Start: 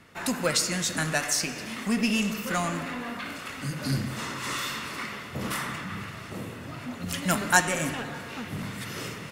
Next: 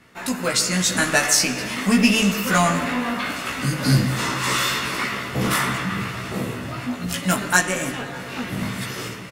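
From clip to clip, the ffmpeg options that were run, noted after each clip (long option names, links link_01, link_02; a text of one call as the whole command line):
ffmpeg -i in.wav -filter_complex "[0:a]dynaudnorm=framelen=160:gausssize=9:maxgain=8dB,asplit=2[link_01][link_02];[link_02]adelay=16,volume=-2dB[link_03];[link_01][link_03]amix=inputs=2:normalize=0" out.wav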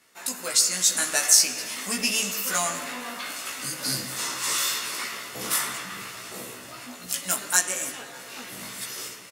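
ffmpeg -i in.wav -af "bass=frequency=250:gain=-14,treble=frequency=4000:gain=13,volume=-9.5dB" out.wav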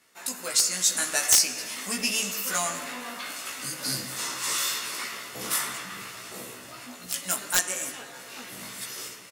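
ffmpeg -i in.wav -af "aeval=exprs='(mod(2*val(0)+1,2)-1)/2':channel_layout=same,volume=-2dB" out.wav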